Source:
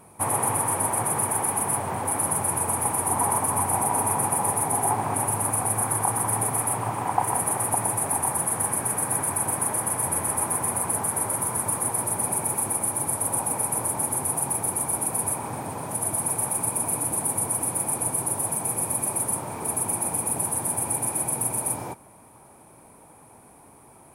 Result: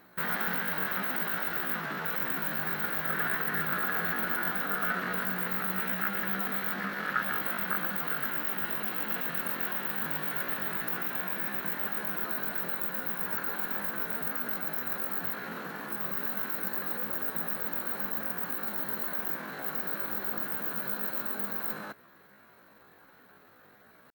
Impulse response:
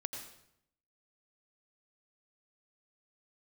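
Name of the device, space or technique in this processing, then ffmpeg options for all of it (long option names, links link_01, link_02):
chipmunk voice: -af "asetrate=76340,aresample=44100,atempo=0.577676,volume=-6dB"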